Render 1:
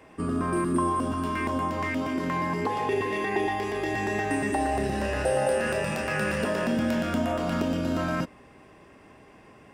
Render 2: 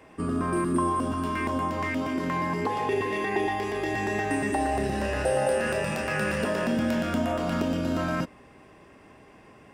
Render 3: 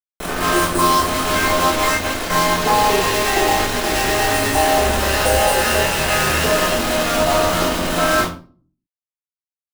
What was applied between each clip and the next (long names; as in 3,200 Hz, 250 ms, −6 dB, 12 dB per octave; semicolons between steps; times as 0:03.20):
no processing that can be heard
parametric band 230 Hz −15 dB 1.4 octaves; bit reduction 5 bits; convolution reverb RT60 0.40 s, pre-delay 3 ms, DRR −9 dB